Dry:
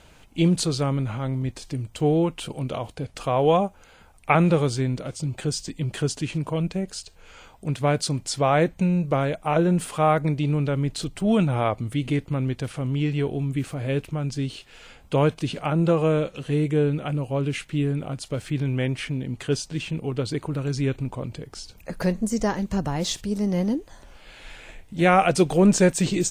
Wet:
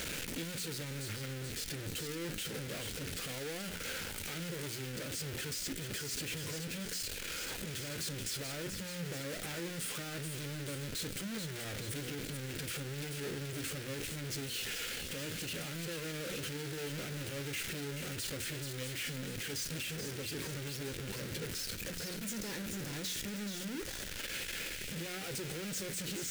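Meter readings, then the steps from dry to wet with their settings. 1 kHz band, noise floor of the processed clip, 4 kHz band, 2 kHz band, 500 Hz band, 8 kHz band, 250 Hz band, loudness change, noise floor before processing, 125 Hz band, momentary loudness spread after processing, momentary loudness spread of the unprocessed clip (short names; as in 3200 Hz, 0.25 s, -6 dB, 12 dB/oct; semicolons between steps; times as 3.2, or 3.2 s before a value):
-23.5 dB, -43 dBFS, -4.5 dB, -8.0 dB, -19.0 dB, -5.0 dB, -19.0 dB, -14.5 dB, -52 dBFS, -18.0 dB, 3 LU, 11 LU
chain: infinite clipping; low shelf 72 Hz -11.5 dB; on a send: thin delay 0.432 s, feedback 53%, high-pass 2100 Hz, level -5 dB; on the sum: flange 1.7 Hz, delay 9.6 ms, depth 2.8 ms, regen +74%; band shelf 870 Hz -11.5 dB 1.1 oct; notches 60/120/180/240/300 Hz; limiter -24.5 dBFS, peak gain reduction 6.5 dB; gain -7 dB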